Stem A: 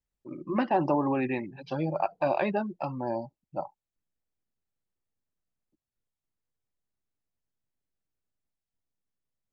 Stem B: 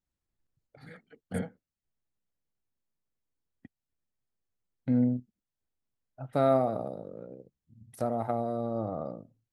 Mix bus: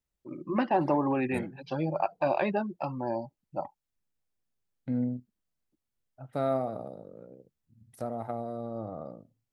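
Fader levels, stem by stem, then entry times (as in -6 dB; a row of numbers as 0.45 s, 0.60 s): -0.5 dB, -4.5 dB; 0.00 s, 0.00 s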